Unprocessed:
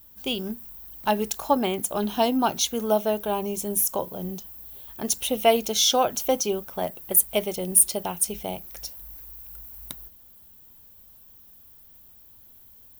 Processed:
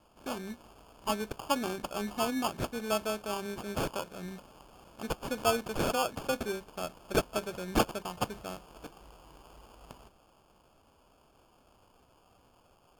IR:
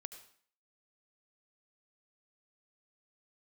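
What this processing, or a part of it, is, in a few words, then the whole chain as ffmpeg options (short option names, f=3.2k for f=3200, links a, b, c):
crushed at another speed: -af "asetrate=55125,aresample=44100,acrusher=samples=18:mix=1:aa=0.000001,asetrate=35280,aresample=44100,volume=-9dB"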